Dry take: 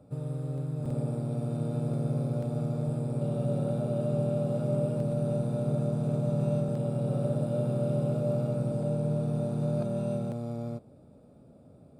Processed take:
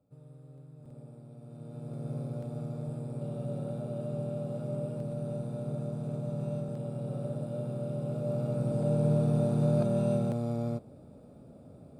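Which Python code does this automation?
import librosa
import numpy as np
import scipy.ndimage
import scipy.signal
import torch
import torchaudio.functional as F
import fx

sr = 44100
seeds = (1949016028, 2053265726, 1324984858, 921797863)

y = fx.gain(x, sr, db=fx.line((1.39, -17.5), (2.13, -6.5), (7.98, -6.5), (9.06, 3.0)))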